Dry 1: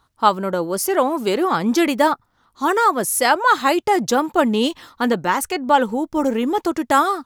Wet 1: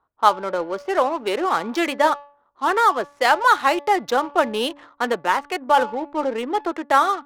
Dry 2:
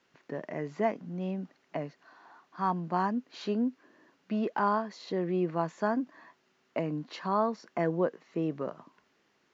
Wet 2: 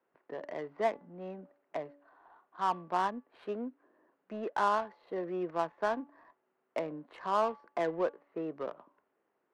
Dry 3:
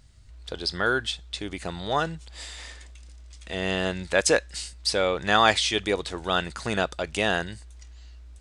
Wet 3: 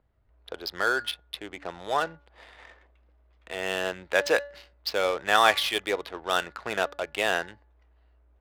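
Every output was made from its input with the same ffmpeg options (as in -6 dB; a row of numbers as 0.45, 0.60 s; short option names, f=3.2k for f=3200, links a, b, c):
-filter_complex "[0:a]acrossover=split=370 4900:gain=0.158 1 0.126[a][b][c];[a][b][c]amix=inputs=3:normalize=0,bandreject=f=286.9:t=h:w=4,bandreject=f=573.8:t=h:w=4,bandreject=f=860.7:t=h:w=4,bandreject=f=1.1476k:t=h:w=4,bandreject=f=1.4345k:t=h:w=4,bandreject=f=1.7214k:t=h:w=4,bandreject=f=2.0083k:t=h:w=4,adynamicsmooth=sensitivity=6:basefreq=980"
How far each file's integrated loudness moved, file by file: -2.0, -3.0, -1.5 LU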